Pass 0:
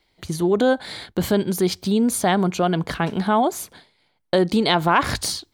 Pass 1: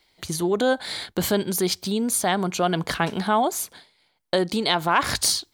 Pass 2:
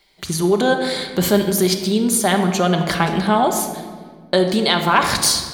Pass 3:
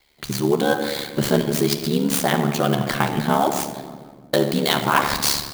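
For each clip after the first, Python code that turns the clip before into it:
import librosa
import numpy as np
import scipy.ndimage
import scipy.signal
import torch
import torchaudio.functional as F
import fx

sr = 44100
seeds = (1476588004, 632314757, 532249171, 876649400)

y1 = fx.bass_treble(x, sr, bass_db=2, treble_db=4)
y1 = fx.rider(y1, sr, range_db=3, speed_s=0.5)
y1 = fx.low_shelf(y1, sr, hz=350.0, db=-8.5)
y2 = fx.room_shoebox(y1, sr, seeds[0], volume_m3=2000.0, walls='mixed', distance_m=1.2)
y2 = y2 * 10.0 ** (4.0 / 20.0)
y3 = y2 * np.sin(2.0 * np.pi * 36.0 * np.arange(len(y2)) / sr)
y3 = fx.clock_jitter(y3, sr, seeds[1], jitter_ms=0.022)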